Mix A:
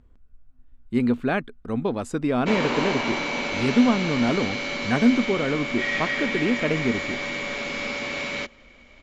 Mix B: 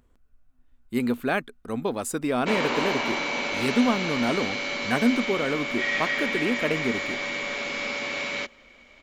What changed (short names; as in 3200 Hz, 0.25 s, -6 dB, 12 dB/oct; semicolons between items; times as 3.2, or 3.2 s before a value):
speech: remove air absorption 92 m; master: add low shelf 220 Hz -9 dB